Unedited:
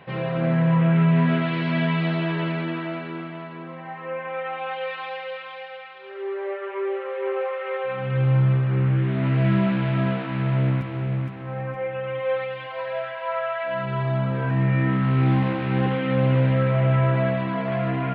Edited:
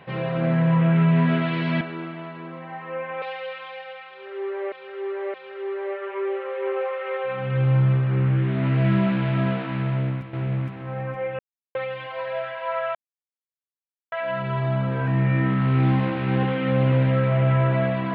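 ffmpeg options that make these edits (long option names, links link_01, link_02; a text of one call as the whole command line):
ffmpeg -i in.wav -filter_complex "[0:a]asplit=9[link_01][link_02][link_03][link_04][link_05][link_06][link_07][link_08][link_09];[link_01]atrim=end=1.812[link_10];[link_02]atrim=start=2.968:end=4.382[link_11];[link_03]atrim=start=5.058:end=6.562[link_12];[link_04]atrim=start=5.938:end=6.562[link_13];[link_05]atrim=start=5.938:end=10.93,asetpts=PTS-STARTPTS,afade=type=out:start_time=4.362:duration=0.63:silence=0.375837[link_14];[link_06]atrim=start=10.93:end=11.99,asetpts=PTS-STARTPTS,afade=type=in:duration=0.004:curve=hsin:silence=0.375837,afade=type=out:start_time=1.056:duration=0.004:curve=hsin[link_15];[link_07]atrim=start=11.99:end=12.35,asetpts=PTS-STARTPTS,volume=0[link_16];[link_08]atrim=start=12.35:end=13.55,asetpts=PTS-STARTPTS,afade=type=in:duration=0.004:curve=hsin,afade=type=out:start_time=1.196:duration=0.004:curve=hsin,apad=pad_dur=1.17[link_17];[link_09]atrim=start=13.55,asetpts=PTS-STARTPTS,afade=type=in:duration=0.004:curve=hsin[link_18];[link_10][link_11]acrossfade=duration=0.004:curve1=hsin:curve2=hsin[link_19];[link_19][link_12]acrossfade=duration=0.004:curve1=hsin:curve2=hsin[link_20];[link_20][link_13]acrossfade=duration=0.004:curve1=hsin:curve2=hsin[link_21];[link_14][link_15][link_16][link_17][link_18]concat=n=5:v=0:a=1[link_22];[link_21][link_22]acrossfade=duration=0.004:curve1=hsin:curve2=hsin" out.wav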